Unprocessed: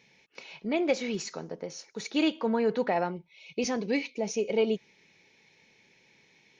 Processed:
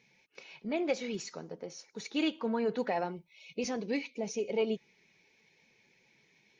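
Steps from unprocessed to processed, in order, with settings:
spectral magnitudes quantised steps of 15 dB
0:02.78–0:03.54: high-shelf EQ 5,500 Hz +10.5 dB
level −4.5 dB

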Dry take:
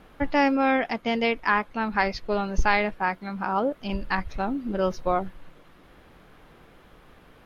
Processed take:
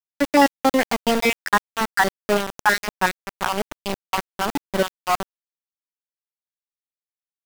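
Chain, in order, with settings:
time-frequency cells dropped at random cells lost 50%
high-pass filter 150 Hz 24 dB per octave
centre clipping without the shift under −26 dBFS
level +7.5 dB

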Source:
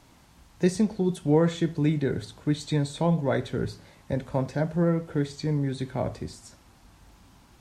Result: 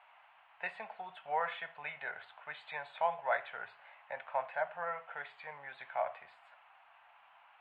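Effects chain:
elliptic band-pass filter 700–2,800 Hz, stop band 40 dB
level +1 dB

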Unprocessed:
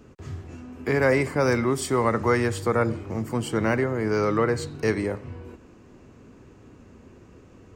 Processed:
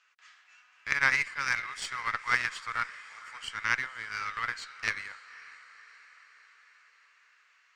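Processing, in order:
high-pass filter 1,500 Hz 24 dB per octave
high-shelf EQ 11,000 Hz −10.5 dB
feedback delay with all-pass diffusion 532 ms, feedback 60%, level −14 dB
harmonic generator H 3 −14 dB, 4 −22 dB, 6 −24 dB, 8 −30 dB, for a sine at −16.5 dBFS
high-frequency loss of the air 87 metres
in parallel at −11 dB: dead-zone distortion −44 dBFS
on the sum: level +8 dB

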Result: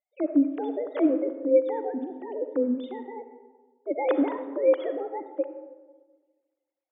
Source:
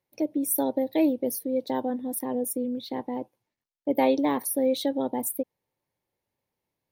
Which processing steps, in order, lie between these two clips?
three sine waves on the formant tracks
comb and all-pass reverb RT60 1.4 s, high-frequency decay 0.4×, pre-delay 20 ms, DRR 9 dB

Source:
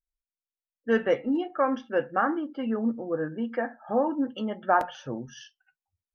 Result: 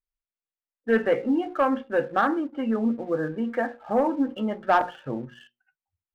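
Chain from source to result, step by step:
low-pass filter 2,700 Hz 24 dB per octave
mains-hum notches 60/120/180/240/300/360/420/480/540 Hz
leveller curve on the samples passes 1

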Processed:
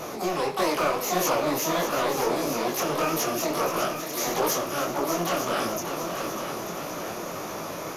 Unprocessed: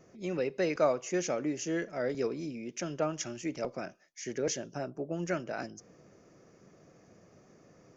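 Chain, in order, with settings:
compressor on every frequency bin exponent 0.6
high-shelf EQ 2,900 Hz +5 dB
in parallel at −2 dB: downward compressor 12 to 1, threshold −36 dBFS, peak gain reduction 17 dB
on the sum: pitch-shifted copies added +12 semitones −1 dB
soft clipping −19 dBFS, distortion −15 dB
on a send: echo machine with several playback heads 299 ms, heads second and third, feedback 54%, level −9 dB
on the sum: micro pitch shift up and down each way 55 cents
level +4 dB

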